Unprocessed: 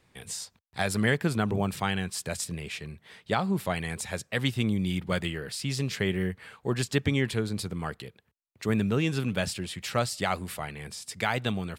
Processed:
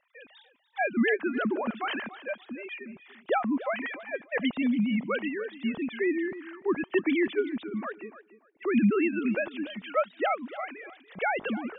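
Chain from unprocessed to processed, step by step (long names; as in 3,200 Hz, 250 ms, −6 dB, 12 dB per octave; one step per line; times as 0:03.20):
three sine waves on the formant tracks
tape delay 291 ms, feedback 20%, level −14 dB, low-pass 2,800 Hz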